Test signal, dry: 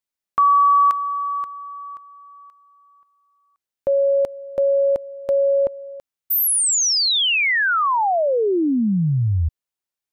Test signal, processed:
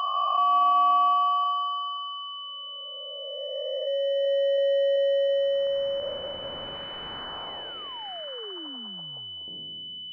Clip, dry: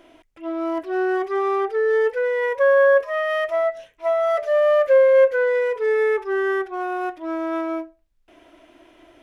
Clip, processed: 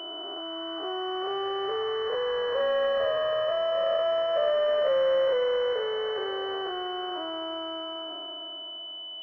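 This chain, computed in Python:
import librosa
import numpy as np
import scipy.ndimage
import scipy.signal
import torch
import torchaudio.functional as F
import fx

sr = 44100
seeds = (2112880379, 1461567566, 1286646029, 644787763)

y = fx.spec_blur(x, sr, span_ms=1290.0)
y = scipy.signal.sosfilt(scipy.signal.butter(2, 620.0, 'highpass', fs=sr, output='sos'), y)
y = fx.echo_feedback(y, sr, ms=380, feedback_pct=52, wet_db=-19)
y = fx.pwm(y, sr, carrier_hz=3000.0)
y = y * librosa.db_to_amplitude(2.5)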